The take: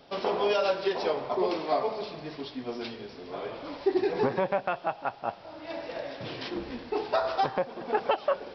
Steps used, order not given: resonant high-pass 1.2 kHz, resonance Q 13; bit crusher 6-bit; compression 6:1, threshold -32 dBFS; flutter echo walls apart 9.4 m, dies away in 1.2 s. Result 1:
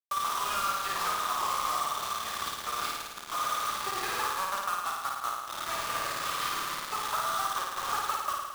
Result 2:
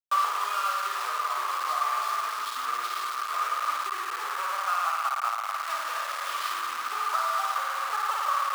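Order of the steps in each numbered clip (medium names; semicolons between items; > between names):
resonant high-pass > compression > bit crusher > flutter echo; flutter echo > compression > bit crusher > resonant high-pass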